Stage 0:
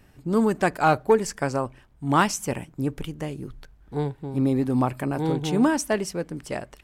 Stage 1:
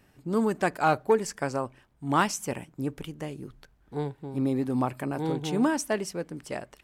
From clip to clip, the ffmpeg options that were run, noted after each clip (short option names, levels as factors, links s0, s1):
-af "lowshelf=f=77:g=-10.5,volume=0.668"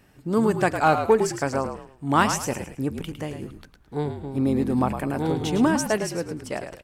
-filter_complex "[0:a]asplit=5[s0][s1][s2][s3][s4];[s1]adelay=107,afreqshift=-48,volume=0.398[s5];[s2]adelay=214,afreqshift=-96,volume=0.127[s6];[s3]adelay=321,afreqshift=-144,volume=0.0407[s7];[s4]adelay=428,afreqshift=-192,volume=0.013[s8];[s0][s5][s6][s7][s8]amix=inputs=5:normalize=0,volume=1.58"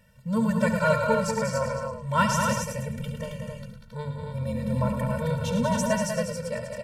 -af "bandreject=f=50:t=h:w=6,bandreject=f=100:t=h:w=6,bandreject=f=150:t=h:w=6,aecho=1:1:69.97|192.4|271.1:0.282|0.501|0.562,afftfilt=real='re*eq(mod(floor(b*sr/1024/220),2),0)':imag='im*eq(mod(floor(b*sr/1024/220),2),0)':win_size=1024:overlap=0.75"